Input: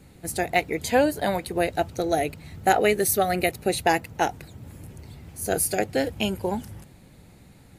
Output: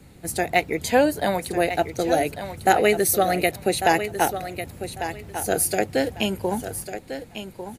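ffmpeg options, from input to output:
-filter_complex "[0:a]acrossover=split=150[a][b];[a]alimiter=level_in=14dB:limit=-24dB:level=0:latency=1,volume=-14dB[c];[b]aecho=1:1:1148|2296|3444:0.316|0.0696|0.0153[d];[c][d]amix=inputs=2:normalize=0,volume=2dB"

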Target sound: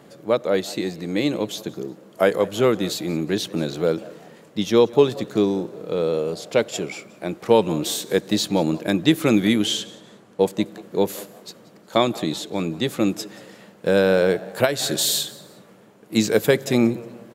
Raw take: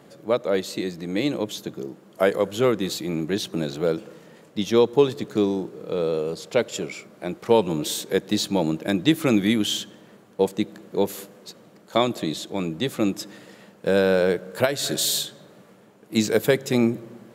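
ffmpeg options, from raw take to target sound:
-filter_complex "[0:a]asettb=1/sr,asplit=3[a][b][c];[a]atrim=end=9.644[d];[b]atrim=start=9.64:end=10.41,asetpts=PTS-STARTPTS,afade=t=in:d=0.004:c=qsin,afade=t=out:st=0.766:d=0.004:c=qsin,lowpass=11k[e];[c]atrim=start=10.406[f];[d][e]acrossfade=d=0.004:c1=hsin:c2=qsin[g];[g][f]acrossfade=d=0.004:c1=qsin:c2=hsin,asplit=2[h][i];[i]asplit=2[j][k];[j]adelay=181,afreqshift=120,volume=-21.5dB[l];[k]adelay=362,afreqshift=240,volume=-31.4dB[m];[l][m]amix=inputs=2:normalize=0[n];[h][n]amix=inputs=2:normalize=0,volume=2dB"

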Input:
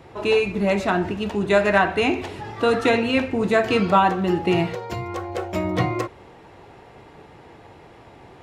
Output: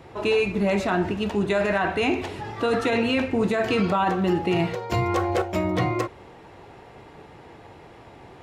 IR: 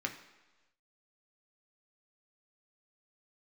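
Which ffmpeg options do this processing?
-filter_complex "[0:a]asettb=1/sr,asplit=3[a][b][c];[a]atrim=end=4.924[d];[b]atrim=start=4.92:end=5.42,asetpts=PTS-STARTPTS,afade=t=in:d=0.004:c=qsin,afade=t=out:st=0.496:d=0.004:c=qsin,acontrast=75[e];[c]atrim=start=5.416[f];[d][e]acrossfade=d=0.004:c1=hsin:c2=qsin[g];[g][f]acrossfade=d=0.004:c1=qsin:c2=hsin,alimiter=limit=-13.5dB:level=0:latency=1:release=16"

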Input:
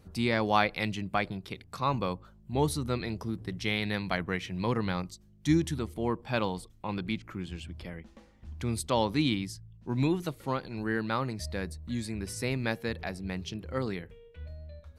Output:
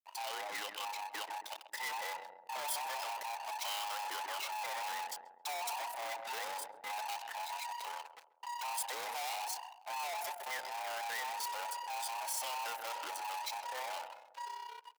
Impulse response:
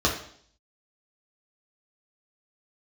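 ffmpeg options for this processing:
-filter_complex "[0:a]afftfilt=real='real(if(between(b,1,1008),(2*floor((b-1)/48)+1)*48-b,b),0)':imag='imag(if(between(b,1,1008),(2*floor((b-1)/48)+1)*48-b,b),0)*if(between(b,1,1008),-1,1)':win_size=2048:overlap=0.75,aeval=exprs='sgn(val(0))*max(abs(val(0))-0.00335,0)':c=same,tremolo=f=32:d=0.71,dynaudnorm=f=440:g=7:m=9dB,asplit=2[a][b];[b]adelay=135,lowpass=f=1.1k:p=1,volume=-19dB,asplit=2[c][d];[d]adelay=135,lowpass=f=1.1k:p=1,volume=0.49,asplit=2[e][f];[f]adelay=135,lowpass=f=1.1k:p=1,volume=0.49,asplit=2[g][h];[h]adelay=135,lowpass=f=1.1k:p=1,volume=0.49[i];[a][c][e][g][i]amix=inputs=5:normalize=0,aeval=exprs='(tanh(126*val(0)+0.35)-tanh(0.35))/126':c=same,highpass=740,highshelf=f=11k:g=9,volume=5.5dB"

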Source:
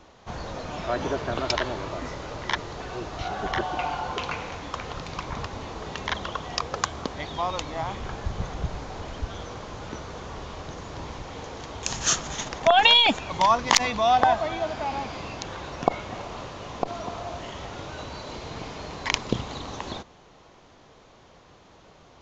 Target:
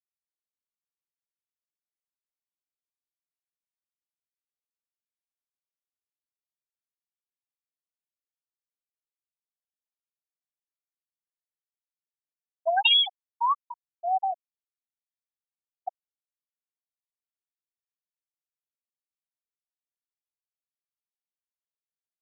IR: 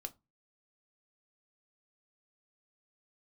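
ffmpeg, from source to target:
-af "highpass=800,afftfilt=real='re*gte(hypot(re,im),0.631)':imag='im*gte(hypot(re,im),0.631)':win_size=1024:overlap=0.75,volume=-1.5dB"

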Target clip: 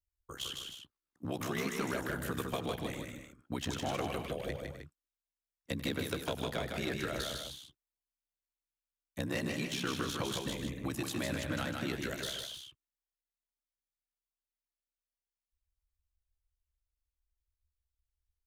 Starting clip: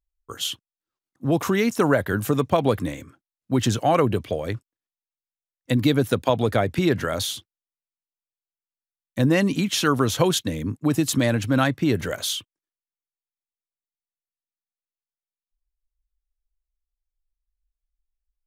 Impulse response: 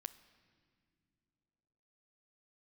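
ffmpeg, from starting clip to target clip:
-filter_complex "[0:a]acrossover=split=680|1800|3600[a][b][c][d];[a]acompressor=threshold=-31dB:ratio=4[e];[b]acompressor=threshold=-37dB:ratio=4[f];[c]acompressor=threshold=-35dB:ratio=4[g];[d]acompressor=threshold=-38dB:ratio=4[h];[e][f][g][h]amix=inputs=4:normalize=0,aeval=exprs='val(0)*sin(2*PI*33*n/s)':c=same,acrossover=split=490[i][j];[j]aeval=exprs='clip(val(0),-1,0.0335)':c=same[k];[i][k]amix=inputs=2:normalize=0,aecho=1:1:93|156|184|256|310:0.126|0.631|0.178|0.211|0.316,volume=-4.5dB"

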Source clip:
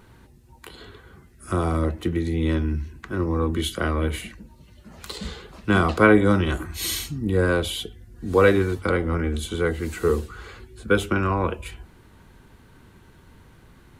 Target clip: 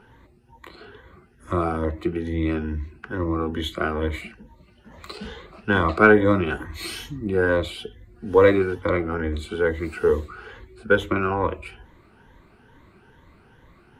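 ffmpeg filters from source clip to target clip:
-af "afftfilt=real='re*pow(10,10/40*sin(2*PI*(1.1*log(max(b,1)*sr/1024/100)/log(2)-(2.3)*(pts-256)/sr)))':imag='im*pow(10,10/40*sin(2*PI*(1.1*log(max(b,1)*sr/1024/100)/log(2)-(2.3)*(pts-256)/sr)))':win_size=1024:overlap=0.75,bass=f=250:g=-5,treble=f=4k:g=-13,aeval=exprs='0.841*(cos(1*acos(clip(val(0)/0.841,-1,1)))-cos(1*PI/2))+0.0168*(cos(4*acos(clip(val(0)/0.841,-1,1)))-cos(4*PI/2))':c=same"

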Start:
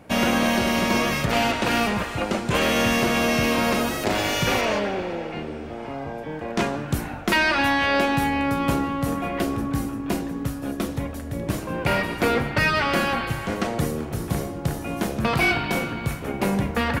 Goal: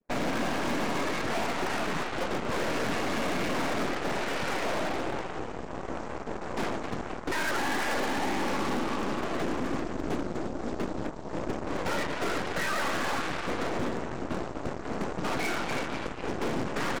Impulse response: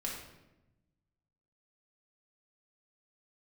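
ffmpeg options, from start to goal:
-filter_complex "[0:a]highpass=230,afwtdn=0.0282,adynamicequalizer=threshold=0.0141:dfrequency=460:dqfactor=0.97:tfrequency=460:tqfactor=0.97:attack=5:release=100:ratio=0.375:range=2.5:mode=cutabove:tftype=bell,alimiter=limit=-16dB:level=0:latency=1:release=65,lowpass=f=2.2k:w=0.5412,lowpass=f=2.2k:w=1.3066,aresample=16000,acrusher=bits=4:mode=log:mix=0:aa=0.000001,aresample=44100,afftfilt=real='hypot(re,im)*cos(2*PI*random(0))':imag='hypot(re,im)*sin(2*PI*random(1))':win_size=512:overlap=0.75,equalizer=f=350:w=0.63:g=4.5,asplit=7[a][b][c][d][e][f][g];[b]adelay=248,afreqshift=68,volume=-9dB[h];[c]adelay=496,afreqshift=136,volume=-14.4dB[i];[d]adelay=744,afreqshift=204,volume=-19.7dB[j];[e]adelay=992,afreqshift=272,volume=-25.1dB[k];[f]adelay=1240,afreqshift=340,volume=-30.4dB[l];[g]adelay=1488,afreqshift=408,volume=-35.8dB[m];[a][h][i][j][k][l][m]amix=inputs=7:normalize=0,volume=25.5dB,asoftclip=hard,volume=-25.5dB,aeval=exprs='0.0562*(cos(1*acos(clip(val(0)/0.0562,-1,1)))-cos(1*PI/2))+0.0178*(cos(4*acos(clip(val(0)/0.0562,-1,1)))-cos(4*PI/2))+0.00316*(cos(6*acos(clip(val(0)/0.0562,-1,1)))-cos(6*PI/2))+0.00631*(cos(7*acos(clip(val(0)/0.0562,-1,1)))-cos(7*PI/2))+0.00631*(cos(8*acos(clip(val(0)/0.0562,-1,1)))-cos(8*PI/2))':c=same"

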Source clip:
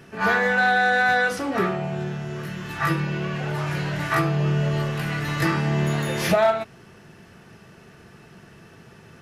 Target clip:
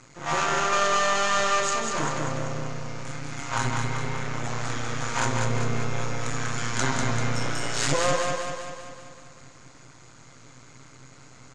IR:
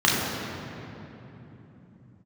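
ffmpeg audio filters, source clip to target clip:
-af "asetrate=35192,aresample=44100,equalizer=f=130:w=3.1:g=13,aeval=exprs='max(val(0),0)':c=same,lowpass=f=6.8k:t=q:w=8.8,lowshelf=f=340:g=-10.5,aecho=1:1:195|390|585|780|975|1170|1365|1560:0.631|0.353|0.198|0.111|0.0621|0.0347|0.0195|0.0109"

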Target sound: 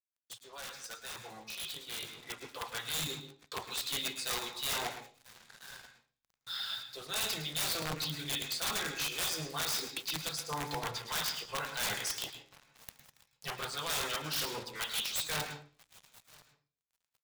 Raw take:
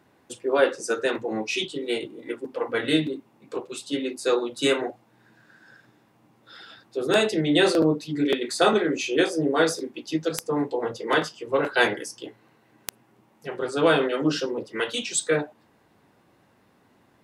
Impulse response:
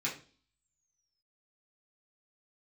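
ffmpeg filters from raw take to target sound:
-filter_complex "[0:a]equalizer=f=250:t=o:w=1:g=-10,equalizer=f=500:t=o:w=1:g=-10,equalizer=f=1k:t=o:w=1:g=3,equalizer=f=2k:t=o:w=1:g=-4,equalizer=f=4k:t=o:w=1:g=11,areverse,acompressor=threshold=-34dB:ratio=6,areverse,aeval=exprs='(mod(28.2*val(0)+1,2)-1)/28.2':c=same,aecho=1:1:985|1970|2955:0.1|0.037|0.0137,acrusher=bits=7:mix=0:aa=0.5,asplit=2[a][b];[1:a]atrim=start_sample=2205,adelay=107[c];[b][c]afir=irnorm=-1:irlink=0,volume=-12dB[d];[a][d]amix=inputs=2:normalize=0,dynaudnorm=f=220:g=21:m=10dB,equalizer=f=320:t=o:w=0.79:g=-9,volume=-8dB"

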